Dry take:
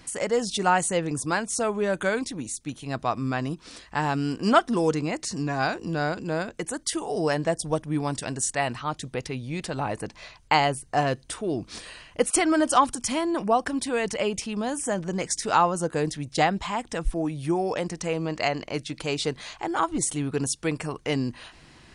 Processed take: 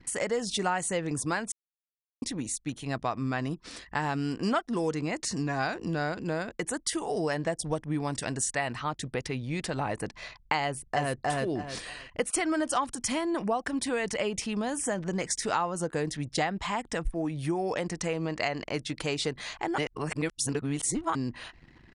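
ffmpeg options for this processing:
-filter_complex "[0:a]asplit=2[a][b];[b]afade=t=in:st=10.65:d=0.01,afade=t=out:st=11.17:d=0.01,aecho=0:1:310|620|930:0.841395|0.168279|0.0336558[c];[a][c]amix=inputs=2:normalize=0,asplit=5[d][e][f][g][h];[d]atrim=end=1.52,asetpts=PTS-STARTPTS,afade=t=out:st=1.516:d=0.004:c=hsin[i];[e]atrim=start=1.52:end=2.22,asetpts=PTS-STARTPTS,volume=0[j];[f]atrim=start=2.22:end=19.782,asetpts=PTS-STARTPTS,afade=t=in:d=0.004:c=hsin[k];[g]atrim=start=19.778:end=21.152,asetpts=PTS-STARTPTS,areverse[l];[h]atrim=start=21.148[m];[i][j][k]concat=n=3:v=0:a=1[n];[n][l]acrossfade=d=0.004:c1=hsin:c2=hsin[o];[o][m]acrossfade=d=0.004:c1=hsin:c2=hsin,equalizer=f=1.9k:t=o:w=0.37:g=4,acompressor=threshold=-27dB:ratio=3,anlmdn=0.01"

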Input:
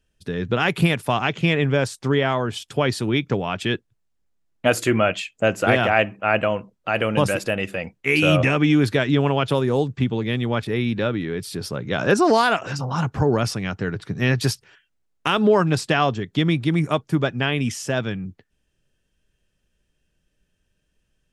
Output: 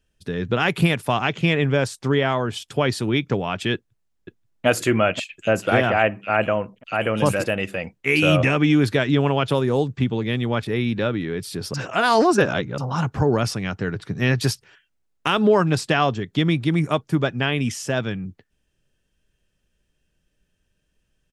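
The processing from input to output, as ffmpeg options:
-filter_complex "[0:a]asplit=2[a][b];[b]afade=t=in:st=3.74:d=0.01,afade=t=out:st=4.66:d=0.01,aecho=0:1:530|1060|1590|2120|2650|3180|3710:0.398107|0.218959|0.120427|0.0662351|0.0364293|0.0200361|0.0110199[c];[a][c]amix=inputs=2:normalize=0,asettb=1/sr,asplit=3[d][e][f];[d]atrim=end=5.244[g];[e]atrim=start=5.24:end=7.47,asetpts=PTS-STARTPTS,afade=t=in:d=0.004:c=qsin,afade=t=out:st=2.226:d=0.004:c=qsin,acrossover=split=2900[h][i];[h]adelay=50[j];[j][i]amix=inputs=2:normalize=0,atrim=end_sample=98343[k];[f]atrim=start=7.466[l];[g][k]acrossfade=d=0.004:c1=hsin:c2=qsin[m];[m][l]acrossfade=d=0.004:c1=qsin:c2=hsin,asplit=3[n][o][p];[n]atrim=end=11.742[q];[o]atrim=start=11.738:end=12.782,asetpts=PTS-STARTPTS,areverse[r];[p]atrim=start=12.778[s];[q][r]acrossfade=d=0.004:c1=hsin:c2=hsin[t];[t][s]acrossfade=d=0.004:c1=hsin:c2=hsin"

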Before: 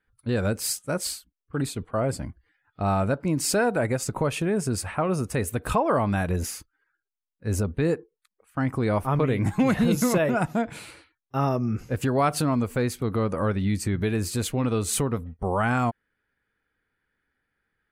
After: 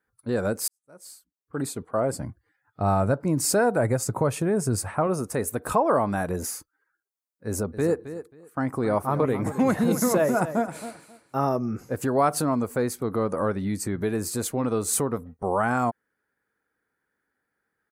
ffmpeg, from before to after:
-filter_complex "[0:a]asettb=1/sr,asplit=3[a][b][c];[a]atrim=end=2.184[d];[b]atrim=start=2.18:end=5.07,asetpts=PTS-STARTPTS,afade=t=in:d=0.004:c=qsin,afade=t=out:st=2.886:d=0.004:c=qsin,equalizer=f=110:t=o:w=0.91:g=10[e];[c]atrim=start=5.066[f];[d][e]acrossfade=d=0.004:c1=hsin:c2=qsin[g];[g][f]acrossfade=d=0.004:c1=qsin:c2=hsin,asplit=3[h][i][j];[h]afade=t=out:st=7.72:d=0.02[k];[i]aecho=1:1:268|536:0.237|0.0451,afade=t=in:st=7.72:d=0.02,afade=t=out:st=11.48:d=0.02[l];[j]afade=t=in:st=11.48:d=0.02[m];[k][l][m]amix=inputs=3:normalize=0,asplit=2[n][o];[n]atrim=end=0.68,asetpts=PTS-STARTPTS,afade=t=out:st=0.676:d=0.004:c=hsin[p];[o]atrim=start=0.68,asetpts=PTS-STARTPTS,afade=t=in:d=0.97:c=qua[q];[p][q]concat=n=2:v=0:a=1,highpass=f=350:p=1,equalizer=f=2.9k:w=1:g=-13,volume=4dB"

